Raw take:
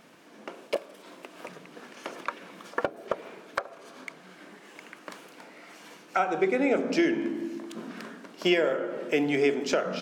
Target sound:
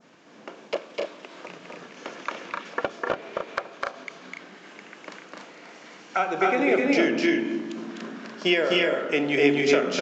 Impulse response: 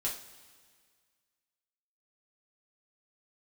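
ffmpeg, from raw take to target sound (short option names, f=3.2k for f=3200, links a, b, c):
-af "adynamicequalizer=threshold=0.00708:dfrequency=2700:dqfactor=0.8:tfrequency=2700:tqfactor=0.8:attack=5:release=100:ratio=0.375:range=2.5:mode=boostabove:tftype=bell,aresample=16000,aresample=44100,aecho=1:1:253.6|288.6:0.794|0.562"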